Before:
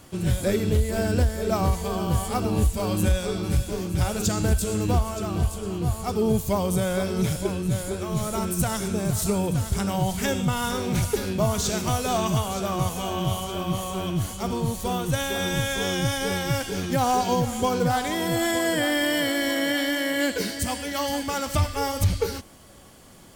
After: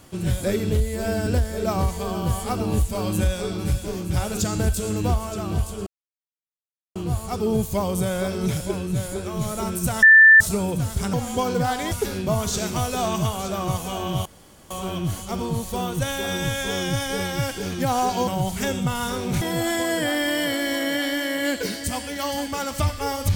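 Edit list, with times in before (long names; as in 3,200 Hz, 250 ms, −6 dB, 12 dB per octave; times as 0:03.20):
0:00.80–0:01.11: time-stretch 1.5×
0:05.71: splice in silence 1.09 s
0:08.78–0:09.16: beep over 1,770 Hz −7 dBFS
0:09.89–0:11.03: swap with 0:17.39–0:18.17
0:13.37–0:13.82: fill with room tone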